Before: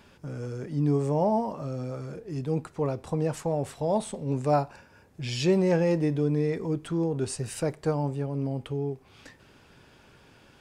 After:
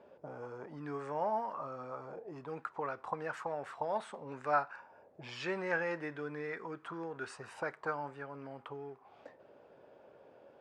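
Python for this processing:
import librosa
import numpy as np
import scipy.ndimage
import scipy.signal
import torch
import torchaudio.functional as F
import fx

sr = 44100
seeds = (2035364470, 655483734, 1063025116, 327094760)

y = fx.auto_wah(x, sr, base_hz=540.0, top_hz=1500.0, q=3.5, full_db=-25.5, direction='up')
y = y * librosa.db_to_amplitude(7.5)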